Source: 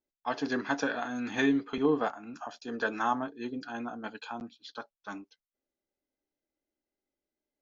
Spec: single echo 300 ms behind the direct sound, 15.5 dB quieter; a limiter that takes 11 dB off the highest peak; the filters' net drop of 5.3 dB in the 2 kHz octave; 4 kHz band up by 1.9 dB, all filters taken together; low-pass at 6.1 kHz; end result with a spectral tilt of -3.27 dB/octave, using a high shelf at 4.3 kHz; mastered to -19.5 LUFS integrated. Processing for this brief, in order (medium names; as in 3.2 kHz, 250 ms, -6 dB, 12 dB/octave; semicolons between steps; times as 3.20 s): low-pass 6.1 kHz; peaking EQ 2 kHz -8 dB; peaking EQ 4 kHz +8.5 dB; treble shelf 4.3 kHz -6 dB; peak limiter -26.5 dBFS; delay 300 ms -15.5 dB; trim +19 dB